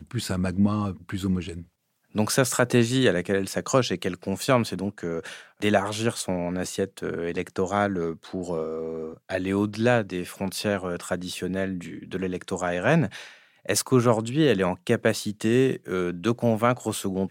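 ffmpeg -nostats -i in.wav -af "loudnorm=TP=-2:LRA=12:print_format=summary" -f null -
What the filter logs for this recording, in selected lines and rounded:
Input Integrated:    -25.4 LUFS
Input True Peak:      -5.8 dBTP
Input LRA:             3.6 LU
Input Threshold:     -35.6 LUFS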